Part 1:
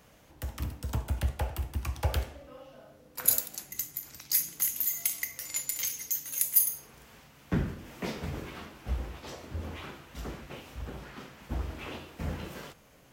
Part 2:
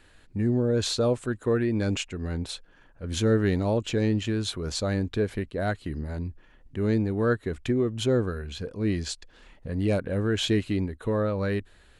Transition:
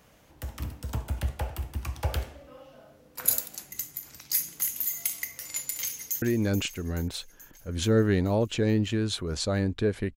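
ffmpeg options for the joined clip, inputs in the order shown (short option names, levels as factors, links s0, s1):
-filter_complex "[0:a]apad=whole_dur=10.16,atrim=end=10.16,atrim=end=6.222[s0];[1:a]atrim=start=1.568:end=5.51[s1];[s0][s1]acrossfade=d=0.004:c1=hsin:c2=hsin,asplit=2[s2][s3];[s3]afade=t=in:st=5.81:d=0.01,afade=t=out:st=6.22:d=0.01,aecho=0:1:430|860|1290|1720|2150|2580|3010|3440:0.237137|0.154139|0.100191|0.0651239|0.0423305|0.0275148|0.0178846|0.011625[s4];[s2][s4]amix=inputs=2:normalize=0"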